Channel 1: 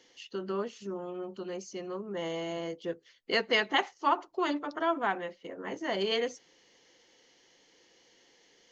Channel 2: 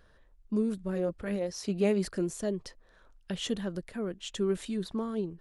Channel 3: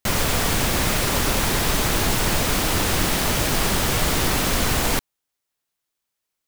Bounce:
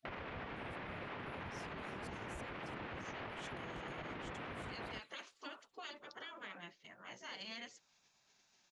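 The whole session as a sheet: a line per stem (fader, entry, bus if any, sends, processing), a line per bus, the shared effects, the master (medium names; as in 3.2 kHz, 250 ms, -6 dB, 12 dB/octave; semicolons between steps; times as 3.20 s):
-2.5 dB, 1.40 s, bus A, no send, no echo send, peaking EQ 730 Hz -5.5 dB 1.6 oct
-10.0 dB, 0.00 s, no bus, no send, echo send -14.5 dB, inverse Chebyshev high-pass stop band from 440 Hz, stop band 70 dB
-7.0 dB, 0.00 s, bus A, no send, no echo send, low-pass 2.6 kHz 24 dB/octave; bass shelf 86 Hz +11 dB
bus A: 0.0 dB, bass shelf 210 Hz -4.5 dB; peak limiter -25 dBFS, peak gain reduction 11 dB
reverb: none
echo: feedback delay 336 ms, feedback 44%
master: spectral gate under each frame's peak -10 dB weak; compression 3:1, threshold -46 dBFS, peak gain reduction 9.5 dB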